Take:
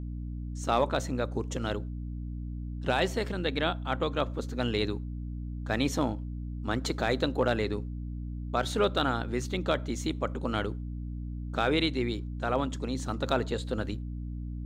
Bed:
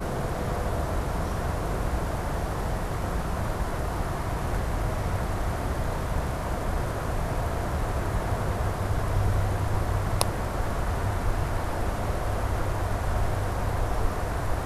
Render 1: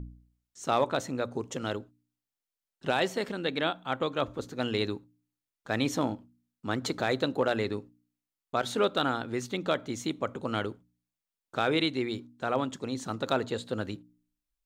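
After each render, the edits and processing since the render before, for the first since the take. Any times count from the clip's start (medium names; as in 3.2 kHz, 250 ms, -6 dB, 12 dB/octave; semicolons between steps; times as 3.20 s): de-hum 60 Hz, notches 5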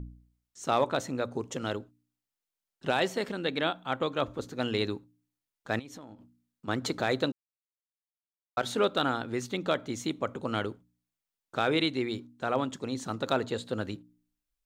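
5.79–6.68 s: compression 10:1, threshold -42 dBFS; 7.32–8.57 s: mute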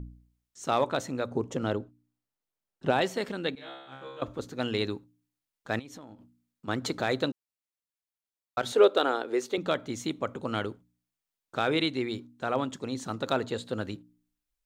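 1.31–3.01 s: tilt shelf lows +5 dB, about 1.4 kHz; 3.55–4.22 s: feedback comb 67 Hz, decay 1 s, mix 100%; 8.72–9.58 s: resonant high-pass 420 Hz, resonance Q 2.7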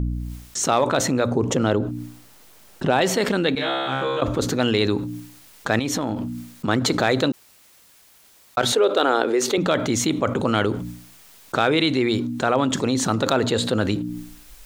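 level flattener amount 70%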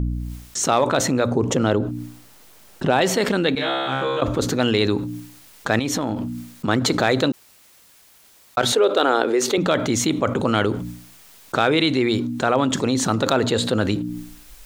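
trim +1 dB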